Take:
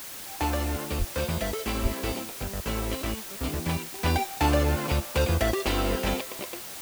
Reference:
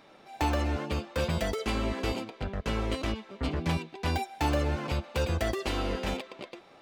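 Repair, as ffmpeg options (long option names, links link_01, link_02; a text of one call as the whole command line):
ffmpeg -i in.wav -filter_complex "[0:a]asplit=3[link_01][link_02][link_03];[link_01]afade=type=out:start_time=0.98:duration=0.02[link_04];[link_02]highpass=frequency=140:width=0.5412,highpass=frequency=140:width=1.3066,afade=type=in:start_time=0.98:duration=0.02,afade=type=out:start_time=1.1:duration=0.02[link_05];[link_03]afade=type=in:start_time=1.1:duration=0.02[link_06];[link_04][link_05][link_06]amix=inputs=3:normalize=0,asplit=3[link_07][link_08][link_09];[link_07]afade=type=out:start_time=1.82:duration=0.02[link_10];[link_08]highpass=frequency=140:width=0.5412,highpass=frequency=140:width=1.3066,afade=type=in:start_time=1.82:duration=0.02,afade=type=out:start_time=1.94:duration=0.02[link_11];[link_09]afade=type=in:start_time=1.94:duration=0.02[link_12];[link_10][link_11][link_12]amix=inputs=3:normalize=0,afwtdn=0.01,asetnsamples=nb_out_samples=441:pad=0,asendcmd='3.99 volume volume -4.5dB',volume=0dB" out.wav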